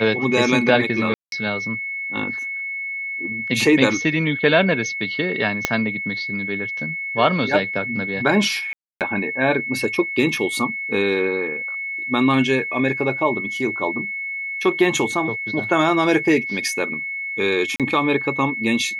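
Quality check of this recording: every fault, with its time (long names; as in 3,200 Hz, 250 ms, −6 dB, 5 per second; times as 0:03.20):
whistle 2,200 Hz −25 dBFS
0:01.14–0:01.32: drop-out 182 ms
0:05.65: click −2 dBFS
0:08.73–0:09.01: drop-out 278 ms
0:17.76–0:17.80: drop-out 37 ms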